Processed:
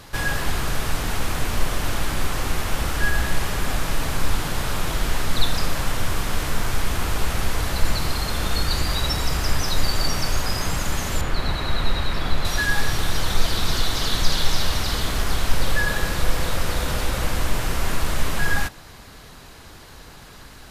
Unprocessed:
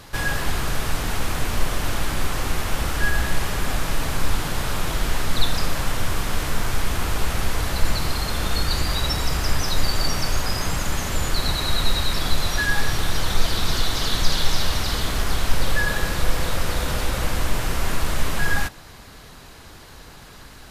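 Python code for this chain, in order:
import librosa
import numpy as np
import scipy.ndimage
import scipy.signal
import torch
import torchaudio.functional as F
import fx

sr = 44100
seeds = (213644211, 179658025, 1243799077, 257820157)

y = fx.bass_treble(x, sr, bass_db=0, treble_db=-12, at=(11.21, 12.45))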